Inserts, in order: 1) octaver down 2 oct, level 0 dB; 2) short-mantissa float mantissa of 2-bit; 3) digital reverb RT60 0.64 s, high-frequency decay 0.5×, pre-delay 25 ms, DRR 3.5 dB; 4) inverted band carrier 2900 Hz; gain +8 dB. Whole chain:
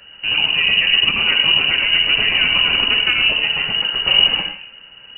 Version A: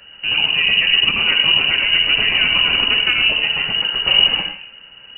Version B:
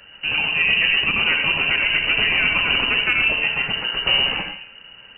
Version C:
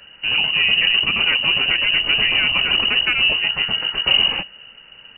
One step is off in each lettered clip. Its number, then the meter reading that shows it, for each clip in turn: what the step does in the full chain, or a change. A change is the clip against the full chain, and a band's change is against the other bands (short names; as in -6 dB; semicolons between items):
2, distortion -20 dB; 1, loudness change -3.5 LU; 3, loudness change -2.0 LU